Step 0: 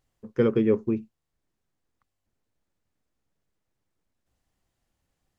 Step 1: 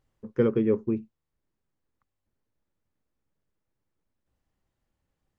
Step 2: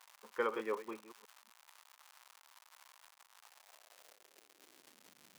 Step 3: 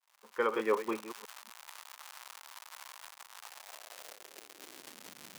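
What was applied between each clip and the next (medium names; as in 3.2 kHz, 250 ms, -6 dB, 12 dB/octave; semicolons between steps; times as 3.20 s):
treble shelf 2.9 kHz -9 dB; band-stop 710 Hz, Q 12; gain riding within 4 dB 0.5 s
chunks repeated in reverse 250 ms, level -12 dB; crackle 250 per s -43 dBFS; high-pass sweep 950 Hz -> 170 Hz, 3.39–5.37 s; trim -1.5 dB
fade-in on the opening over 1.08 s; trim +12 dB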